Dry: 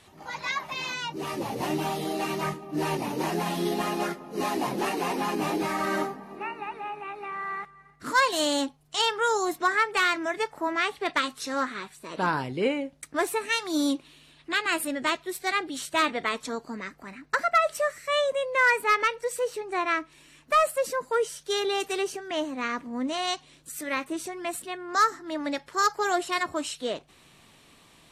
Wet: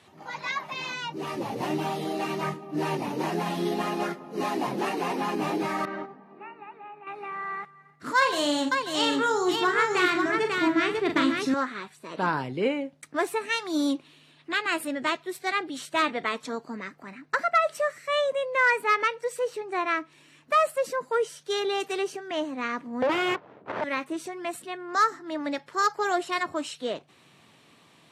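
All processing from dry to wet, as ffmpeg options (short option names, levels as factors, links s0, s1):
-filter_complex "[0:a]asettb=1/sr,asplit=3[s0][s1][s2];[s0]atrim=end=5.854[s3];[s1]atrim=start=5.85:end=7.07,asetpts=PTS-STARTPTS,afade=t=in:d=0.004:c=qsin,afade=t=out:st=1.216:d=0.004:c=qsin,lowpass=2900,agate=range=0.398:threshold=0.0316:ratio=16:release=100:detection=peak,acompressor=threshold=0.0158:ratio=2:attack=3.2:release=140:knee=1:detection=peak[s4];[s2]atrim=start=7.066[s5];[s3][s4]acrossfade=d=0.004:c1=hsin:c2=qsin[s6];[s6][s5]acrossfade=d=0.004:c1=qsin:c2=hsin,asettb=1/sr,asplit=3[s7][s8][s9];[s7]atrim=end=8.174[s10];[s8]atrim=start=8.17:end=11.54,asetpts=PTS-STARTPTS,afade=t=in:d=0.004:c=qsin,afade=t=out:st=3.366:d=0.004:c=qsin,aecho=1:1:41|119|147|544|688:0.473|0.15|0.126|0.668|0.112,atrim=end_sample=148617,asubboost=boost=11.5:cutoff=240[s11];[s9]atrim=start=11.536[s12];[s10][s11]acrossfade=d=0.004:c1=hsin:c2=qsin[s13];[s13][s12]acrossfade=d=0.004:c1=qsin:c2=hsin,asettb=1/sr,asplit=3[s14][s15][s16];[s14]atrim=end=23.024[s17];[s15]atrim=start=23.02:end=23.84,asetpts=PTS-STARTPTS,afade=t=in:d=0.004:c=qsin,afade=t=out:st=0.816:d=0.004:c=qsin,aeval=exprs='abs(val(0))':c=same,adynamicsmooth=sensitivity=7.5:basefreq=650,asplit=2[s18][s19];[s19]highpass=f=720:p=1,volume=35.5,asoftclip=type=tanh:threshold=0.188[s20];[s18][s20]amix=inputs=2:normalize=0,lowpass=f=1700:p=1,volume=0.501[s21];[s16]atrim=start=23.836[s22];[s17][s21]acrossfade=d=0.004:c1=hsin:c2=qsin[s23];[s23][s22]acrossfade=d=0.004:c1=qsin:c2=hsin,highpass=f=100:w=0.5412,highpass=f=100:w=1.3066,highshelf=f=6100:g=-8.5"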